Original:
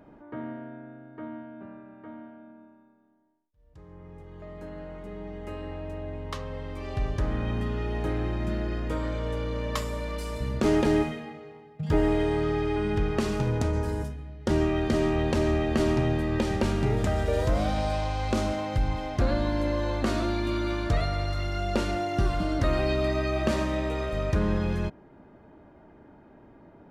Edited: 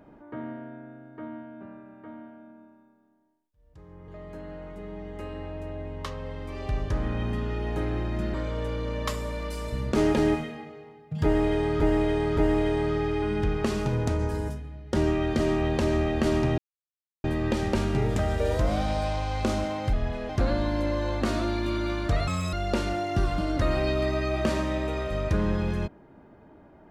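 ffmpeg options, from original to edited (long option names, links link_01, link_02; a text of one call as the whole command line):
ffmpeg -i in.wav -filter_complex "[0:a]asplit=10[link_01][link_02][link_03][link_04][link_05][link_06][link_07][link_08][link_09][link_10];[link_01]atrim=end=4.082[link_11];[link_02]atrim=start=4.358:end=8.622[link_12];[link_03]atrim=start=9.018:end=12.482[link_13];[link_04]atrim=start=11.908:end=12.482[link_14];[link_05]atrim=start=11.908:end=16.12,asetpts=PTS-STARTPTS,afade=type=out:start_time=4.208:duration=0.004:curve=hsin,apad=pad_dur=0.66[link_15];[link_06]atrim=start=16.12:end=18.814,asetpts=PTS-STARTPTS,afade=type=in:duration=0.004:curve=hsin[link_16];[link_07]atrim=start=18.81:end=19.1,asetpts=PTS-STARTPTS,asetrate=35280,aresample=44100,atrim=end_sample=15986,asetpts=PTS-STARTPTS[link_17];[link_08]atrim=start=19.096:end=21.084[link_18];[link_09]atrim=start=21.08:end=21.55,asetpts=PTS-STARTPTS,asetrate=80703,aresample=44100,atrim=end_sample=11326,asetpts=PTS-STARTPTS[link_19];[link_10]atrim=start=21.546[link_20];[link_11][link_12]acrossfade=duration=0.004:curve1=hsin:curve2=hsin[link_21];[link_21][link_13]acrossfade=duration=0.004:curve1=hsin:curve2=hsin[link_22];[link_22][link_14]acrossfade=duration=0.004:curve1=hsin:curve2=hsin[link_23];[link_15][link_16]concat=n=2:v=0:a=1[link_24];[link_23][link_24]acrossfade=duration=0.004:curve1=hsin:curve2=hsin[link_25];[link_25][link_17]acrossfade=duration=0.004:curve1=hsin:curve2=hsin[link_26];[link_26][link_18]acrossfade=duration=0.004:curve1=hsin:curve2=hsin[link_27];[link_27][link_19]acrossfade=duration=0.004:curve1=hsin:curve2=hsin[link_28];[link_28][link_20]acrossfade=duration=0.004:curve1=hsin:curve2=hsin" out.wav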